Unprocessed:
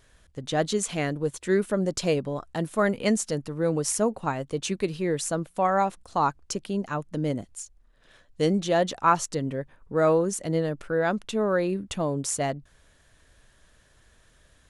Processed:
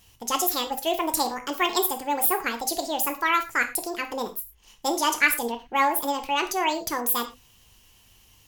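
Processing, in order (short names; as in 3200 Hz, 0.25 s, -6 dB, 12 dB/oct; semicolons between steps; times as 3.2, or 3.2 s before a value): tilt shelf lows -5 dB, about 1400 Hz; non-linear reverb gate 0.23 s falling, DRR 5.5 dB; speed mistake 45 rpm record played at 78 rpm; gain +2 dB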